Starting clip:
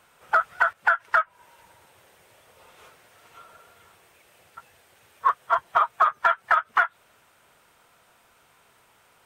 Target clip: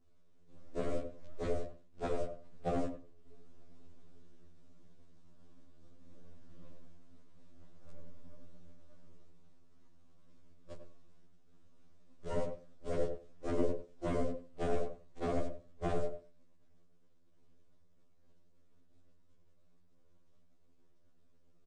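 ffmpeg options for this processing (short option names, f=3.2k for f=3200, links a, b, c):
-filter_complex "[0:a]acrusher=bits=7:dc=4:mix=0:aa=0.000001,aeval=exprs='0.447*(cos(1*acos(clip(val(0)/0.447,-1,1)))-cos(1*PI/2))+0.0501*(cos(3*acos(clip(val(0)/0.447,-1,1)))-cos(3*PI/2))+0.0398*(cos(6*acos(clip(val(0)/0.447,-1,1)))-cos(6*PI/2))+0.0398*(cos(8*acos(clip(val(0)/0.447,-1,1)))-cos(8*PI/2))':c=same,asuperstop=centerf=2000:order=4:qfactor=5.5,tiltshelf=f=1.1k:g=9,asetrate=18846,aresample=44100,afftfilt=real='re*lt(hypot(re,im),0.501)':imag='im*lt(hypot(re,im),0.501)':win_size=1024:overlap=0.75,alimiter=limit=-21dB:level=0:latency=1:release=183,agate=range=-33dB:threshold=-55dB:ratio=3:detection=peak,flanger=delay=3.9:depth=4.4:regen=78:speed=1.4:shape=sinusoidal,lowshelf=f=120:g=2,asplit=2[a][b];[b]adelay=97,lowpass=f=1k:p=1,volume=-5.5dB,asplit=2[c][d];[d]adelay=97,lowpass=f=1k:p=1,volume=0.17,asplit=2[e][f];[f]adelay=97,lowpass=f=1k:p=1,volume=0.17[g];[a][c][e][g]amix=inputs=4:normalize=0,afftfilt=real='re*2*eq(mod(b,4),0)':imag='im*2*eq(mod(b,4),0)':win_size=2048:overlap=0.75,volume=3dB"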